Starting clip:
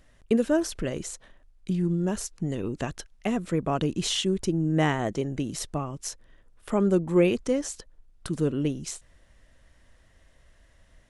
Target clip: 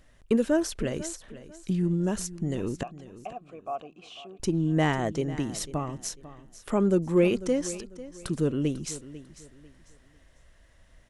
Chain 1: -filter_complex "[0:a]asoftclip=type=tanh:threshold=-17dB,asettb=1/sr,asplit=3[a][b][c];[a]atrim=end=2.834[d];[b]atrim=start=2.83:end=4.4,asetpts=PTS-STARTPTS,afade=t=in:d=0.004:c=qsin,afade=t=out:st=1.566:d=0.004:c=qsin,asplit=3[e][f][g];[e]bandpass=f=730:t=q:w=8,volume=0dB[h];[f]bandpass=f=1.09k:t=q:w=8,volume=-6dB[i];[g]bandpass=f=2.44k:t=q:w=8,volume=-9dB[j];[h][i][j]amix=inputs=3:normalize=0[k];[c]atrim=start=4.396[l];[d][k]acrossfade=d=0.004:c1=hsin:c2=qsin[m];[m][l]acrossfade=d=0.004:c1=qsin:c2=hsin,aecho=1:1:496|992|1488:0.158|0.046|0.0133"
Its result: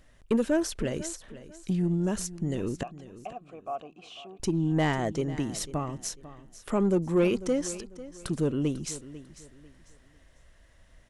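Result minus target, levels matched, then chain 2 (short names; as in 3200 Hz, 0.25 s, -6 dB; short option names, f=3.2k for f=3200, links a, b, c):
soft clip: distortion +10 dB
-filter_complex "[0:a]asoftclip=type=tanh:threshold=-10.5dB,asettb=1/sr,asplit=3[a][b][c];[a]atrim=end=2.834[d];[b]atrim=start=2.83:end=4.4,asetpts=PTS-STARTPTS,afade=t=in:d=0.004:c=qsin,afade=t=out:st=1.566:d=0.004:c=qsin,asplit=3[e][f][g];[e]bandpass=f=730:t=q:w=8,volume=0dB[h];[f]bandpass=f=1.09k:t=q:w=8,volume=-6dB[i];[g]bandpass=f=2.44k:t=q:w=8,volume=-9dB[j];[h][i][j]amix=inputs=3:normalize=0[k];[c]atrim=start=4.396[l];[d][k]acrossfade=d=0.004:c1=hsin:c2=qsin[m];[m][l]acrossfade=d=0.004:c1=qsin:c2=hsin,aecho=1:1:496|992|1488:0.158|0.046|0.0133"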